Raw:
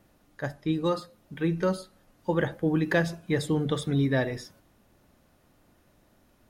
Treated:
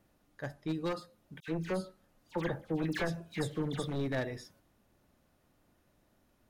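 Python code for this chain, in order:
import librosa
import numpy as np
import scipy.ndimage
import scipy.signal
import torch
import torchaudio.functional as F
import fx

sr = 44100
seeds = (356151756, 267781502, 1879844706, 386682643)

y = np.minimum(x, 2.0 * 10.0 ** (-23.0 / 20.0) - x)
y = fx.dispersion(y, sr, late='lows', ms=77.0, hz=2200.0, at=(1.4, 3.88))
y = F.gain(torch.from_numpy(y), -7.5).numpy()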